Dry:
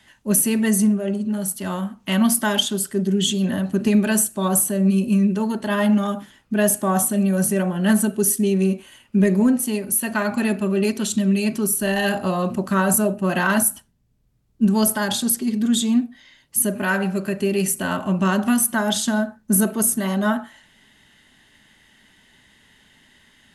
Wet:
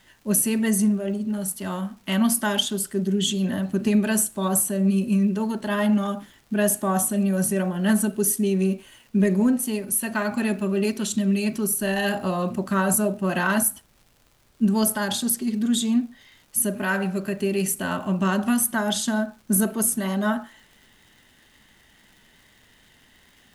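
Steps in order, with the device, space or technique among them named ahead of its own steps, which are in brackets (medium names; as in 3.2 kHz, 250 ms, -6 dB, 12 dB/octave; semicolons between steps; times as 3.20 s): vinyl LP (wow and flutter 15 cents; crackle 140 per s -41 dBFS; pink noise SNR 39 dB); trim -3 dB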